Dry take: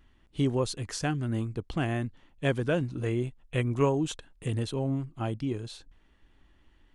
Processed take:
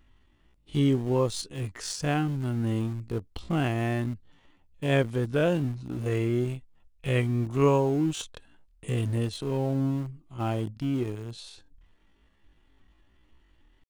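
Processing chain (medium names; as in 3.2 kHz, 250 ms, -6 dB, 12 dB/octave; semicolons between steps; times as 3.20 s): peaking EQ 1.6 kHz -3.5 dB 0.21 oct; tempo 0.5×; in parallel at -11 dB: small samples zeroed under -31.5 dBFS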